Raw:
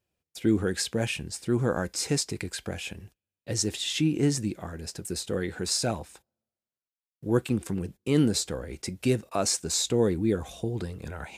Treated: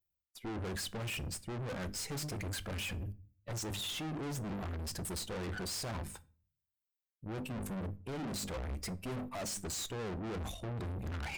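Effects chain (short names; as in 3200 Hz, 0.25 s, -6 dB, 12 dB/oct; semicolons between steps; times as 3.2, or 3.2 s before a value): per-bin expansion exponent 1.5; low shelf 450 Hz +6.5 dB; notches 50/100/150/200/250/300 Hz; reverse; compressor 10:1, threshold -37 dBFS, peak gain reduction 22.5 dB; reverse; limiter -32 dBFS, peak gain reduction 6 dB; tube stage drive 56 dB, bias 0.7; on a send: reverb RT60 0.45 s, pre-delay 15 ms, DRR 16.5 dB; on the sum: gain +18 dB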